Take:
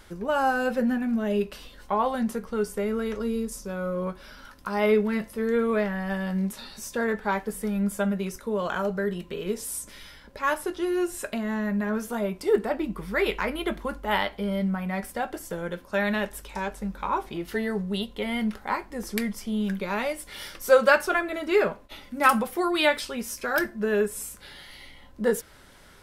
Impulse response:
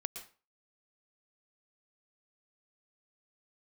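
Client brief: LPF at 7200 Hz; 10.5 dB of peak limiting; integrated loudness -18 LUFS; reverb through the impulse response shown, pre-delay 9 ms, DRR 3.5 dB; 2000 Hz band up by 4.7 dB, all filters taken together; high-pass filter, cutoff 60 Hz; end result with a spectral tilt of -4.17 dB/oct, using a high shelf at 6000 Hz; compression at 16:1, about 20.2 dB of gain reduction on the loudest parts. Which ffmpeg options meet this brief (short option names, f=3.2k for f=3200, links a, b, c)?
-filter_complex "[0:a]highpass=60,lowpass=7.2k,equalizer=f=2k:t=o:g=5.5,highshelf=f=6k:g=6.5,acompressor=threshold=-31dB:ratio=16,alimiter=level_in=2.5dB:limit=-24dB:level=0:latency=1,volume=-2.5dB,asplit=2[a][b];[1:a]atrim=start_sample=2205,adelay=9[c];[b][c]afir=irnorm=-1:irlink=0,volume=-3dB[d];[a][d]amix=inputs=2:normalize=0,volume=17dB"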